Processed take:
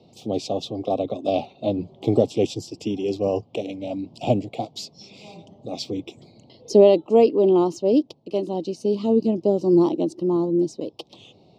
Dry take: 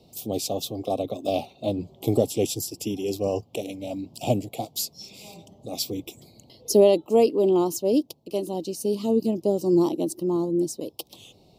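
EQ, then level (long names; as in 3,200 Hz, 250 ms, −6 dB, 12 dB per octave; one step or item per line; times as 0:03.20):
high-pass filter 99 Hz
high-frequency loss of the air 140 metres
high-shelf EQ 11,000 Hz −5.5 dB
+3.5 dB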